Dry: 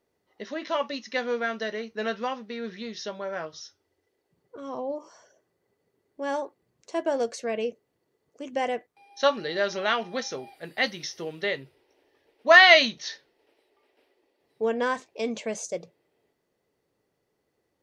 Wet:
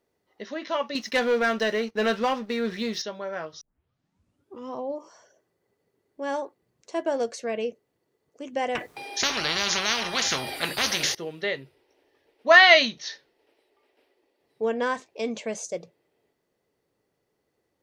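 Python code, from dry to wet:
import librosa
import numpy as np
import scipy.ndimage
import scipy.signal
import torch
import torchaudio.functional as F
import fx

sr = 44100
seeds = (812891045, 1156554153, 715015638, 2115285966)

y = fx.leveller(x, sr, passes=2, at=(0.95, 3.02))
y = fx.spectral_comp(y, sr, ratio=10.0, at=(8.75, 11.15))
y = fx.edit(y, sr, fx.tape_start(start_s=3.61, length_s=1.13), tone=tone)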